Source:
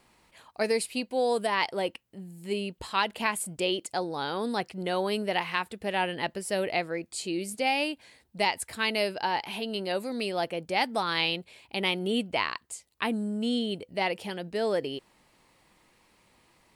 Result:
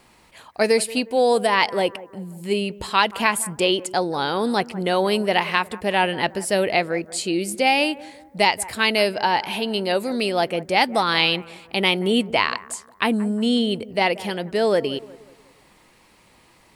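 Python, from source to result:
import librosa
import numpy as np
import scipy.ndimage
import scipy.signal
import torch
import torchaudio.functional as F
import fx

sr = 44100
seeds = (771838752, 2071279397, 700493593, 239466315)

y = fx.echo_bbd(x, sr, ms=180, stages=2048, feedback_pct=42, wet_db=-18)
y = F.gain(torch.from_numpy(y), 8.5).numpy()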